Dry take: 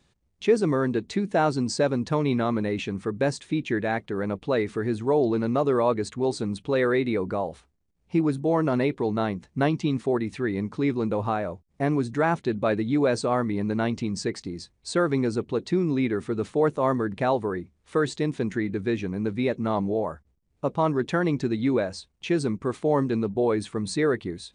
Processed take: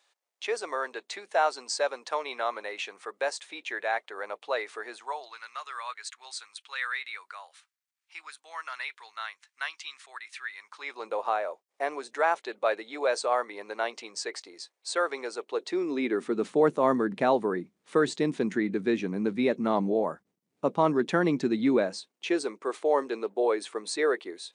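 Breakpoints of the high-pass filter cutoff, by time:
high-pass filter 24 dB per octave
0:04.90 600 Hz
0:05.38 1,300 Hz
0:10.55 1,300 Hz
0:11.09 520 Hz
0:15.41 520 Hz
0:16.55 180 Hz
0:21.82 180 Hz
0:22.48 400 Hz

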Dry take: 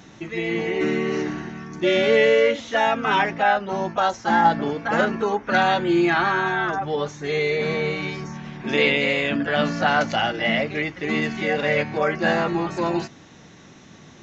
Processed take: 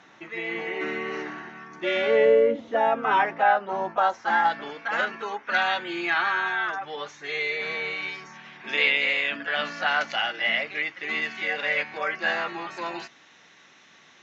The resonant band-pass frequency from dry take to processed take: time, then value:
resonant band-pass, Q 0.79
0:02.00 1,400 Hz
0:02.47 280 Hz
0:03.18 980 Hz
0:04.02 980 Hz
0:04.52 2,300 Hz

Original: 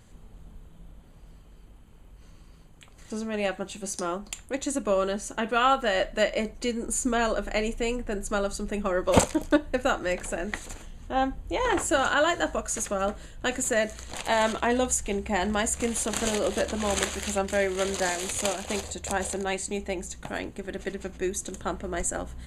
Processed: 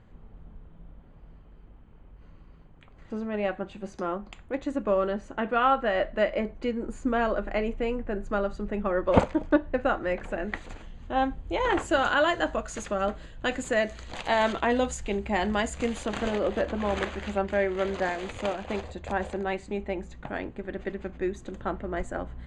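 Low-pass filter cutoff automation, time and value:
0:10.01 2,000 Hz
0:11.16 4,000 Hz
0:15.87 4,000 Hz
0:16.31 2,200 Hz

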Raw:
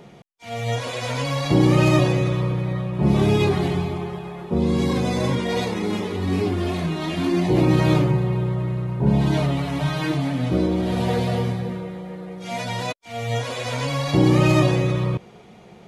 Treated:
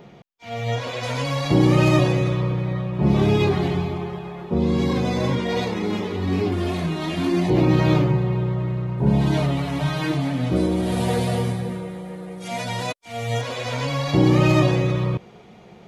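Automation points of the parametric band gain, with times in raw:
parametric band 9,500 Hz 0.73 octaves
−14 dB
from 0:01.03 −3.5 dB
from 0:02.34 −9.5 dB
from 0:06.52 −0.5 dB
from 0:07.50 −11 dB
from 0:08.98 −0.5 dB
from 0:10.56 +10.5 dB
from 0:12.48 +3 dB
from 0:13.41 −6.5 dB

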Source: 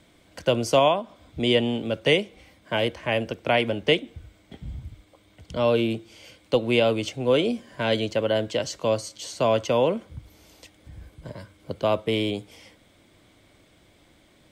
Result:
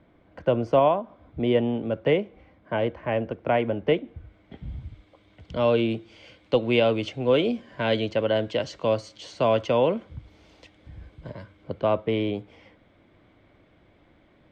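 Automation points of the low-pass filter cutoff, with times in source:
0:04.04 1,500 Hz
0:04.79 3,500 Hz
0:11.28 3,500 Hz
0:11.95 2,100 Hz

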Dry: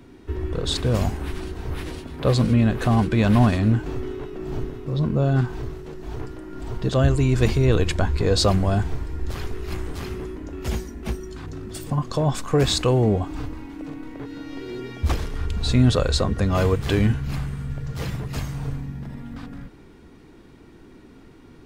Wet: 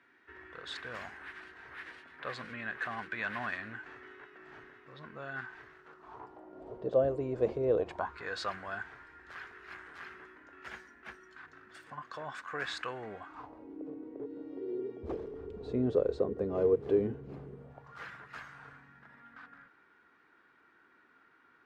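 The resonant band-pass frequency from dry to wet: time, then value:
resonant band-pass, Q 3.7
0:05.74 1,700 Hz
0:06.68 540 Hz
0:07.77 540 Hz
0:08.23 1,600 Hz
0:13.25 1,600 Hz
0:13.70 420 Hz
0:17.55 420 Hz
0:18.01 1,500 Hz

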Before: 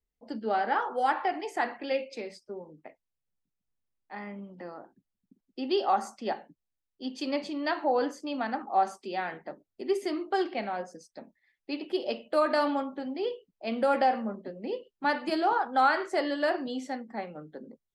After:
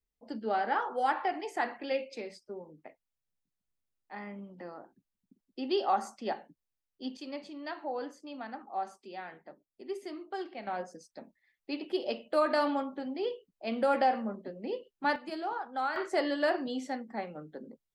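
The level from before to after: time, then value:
−2.5 dB
from 0:07.17 −10 dB
from 0:10.67 −2 dB
from 0:15.16 −9.5 dB
from 0:15.96 −1 dB

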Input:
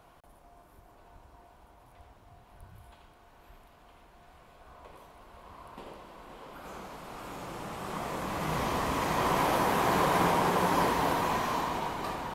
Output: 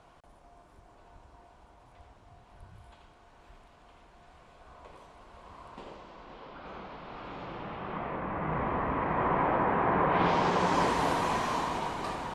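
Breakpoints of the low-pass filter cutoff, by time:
low-pass filter 24 dB per octave
0:05.63 8,900 Hz
0:06.73 4,000 Hz
0:07.43 4,000 Hz
0:08.34 2,100 Hz
0:10.07 2,100 Hz
0:10.33 5,400 Hz
0:11.02 10,000 Hz

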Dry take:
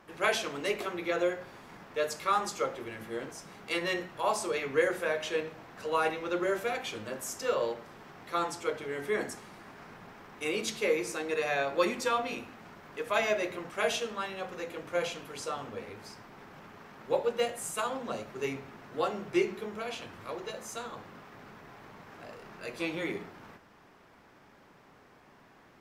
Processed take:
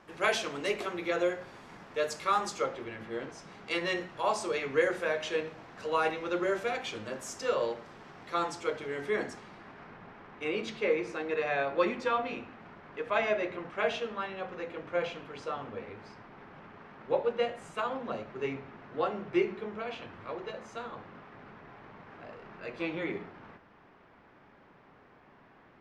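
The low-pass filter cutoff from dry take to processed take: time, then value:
0:02.46 8,900 Hz
0:02.97 3,900 Hz
0:03.90 7,000 Hz
0:08.92 7,000 Hz
0:09.96 2,900 Hz

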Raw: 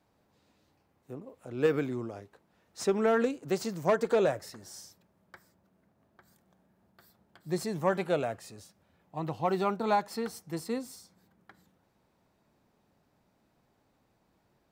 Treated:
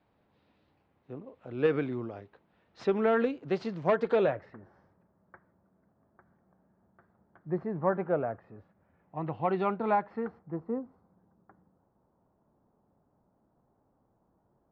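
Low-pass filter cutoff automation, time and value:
low-pass filter 24 dB per octave
0:04.21 3,700 Hz
0:04.64 1,600 Hz
0:08.52 1,600 Hz
0:09.64 3,100 Hz
0:10.65 1,200 Hz

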